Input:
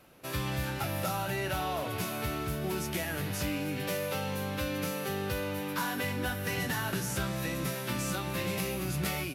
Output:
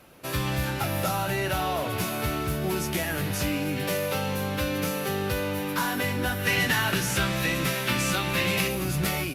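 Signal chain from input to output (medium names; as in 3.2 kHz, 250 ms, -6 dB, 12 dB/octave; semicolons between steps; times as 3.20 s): 6.38–8.68 s: dynamic bell 2.6 kHz, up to +7 dB, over -50 dBFS, Q 0.78; trim +5.5 dB; Opus 48 kbps 48 kHz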